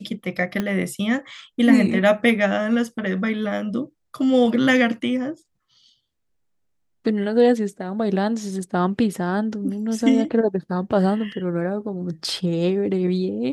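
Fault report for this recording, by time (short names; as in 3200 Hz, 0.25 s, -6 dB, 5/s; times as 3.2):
0.6 pop -11 dBFS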